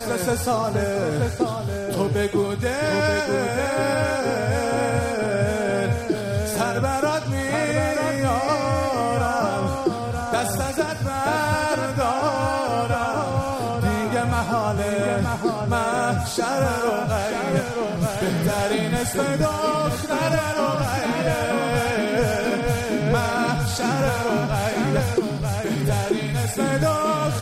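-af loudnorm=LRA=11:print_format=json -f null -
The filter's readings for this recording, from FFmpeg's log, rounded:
"input_i" : "-22.6",
"input_tp" : "-9.3",
"input_lra" : "0.8",
"input_thresh" : "-32.6",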